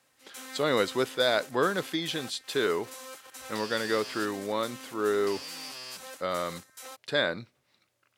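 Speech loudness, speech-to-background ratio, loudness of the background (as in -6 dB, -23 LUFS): -29.5 LUFS, 13.0 dB, -42.5 LUFS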